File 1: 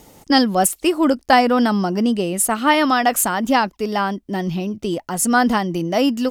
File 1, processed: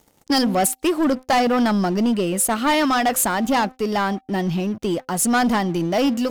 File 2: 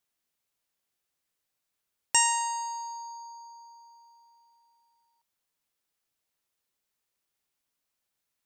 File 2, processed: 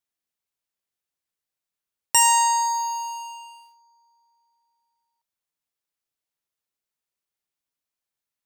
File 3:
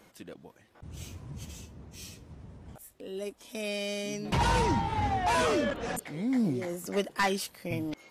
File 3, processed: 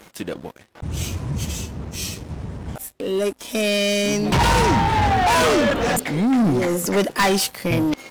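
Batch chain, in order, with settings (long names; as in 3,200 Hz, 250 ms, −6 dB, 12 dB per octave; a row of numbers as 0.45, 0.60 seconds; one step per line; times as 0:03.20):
hum removal 257.3 Hz, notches 3
leveller curve on the samples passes 3
loudness normalisation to −20 LKFS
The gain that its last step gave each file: −10.0, 0.0, +6.0 decibels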